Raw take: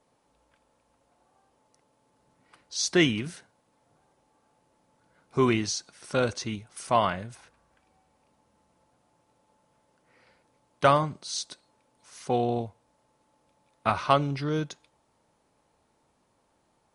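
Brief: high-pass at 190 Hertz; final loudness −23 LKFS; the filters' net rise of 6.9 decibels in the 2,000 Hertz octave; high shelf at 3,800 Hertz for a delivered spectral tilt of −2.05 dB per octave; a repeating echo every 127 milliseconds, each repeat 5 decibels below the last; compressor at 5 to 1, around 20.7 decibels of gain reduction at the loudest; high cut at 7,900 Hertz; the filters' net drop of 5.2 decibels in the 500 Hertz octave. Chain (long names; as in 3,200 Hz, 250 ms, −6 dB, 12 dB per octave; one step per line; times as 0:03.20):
high-pass filter 190 Hz
low-pass filter 7,900 Hz
parametric band 500 Hz −7.5 dB
parametric band 2,000 Hz +7 dB
high-shelf EQ 3,800 Hz +8 dB
downward compressor 5 to 1, threshold −39 dBFS
repeating echo 127 ms, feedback 56%, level −5 dB
level +17.5 dB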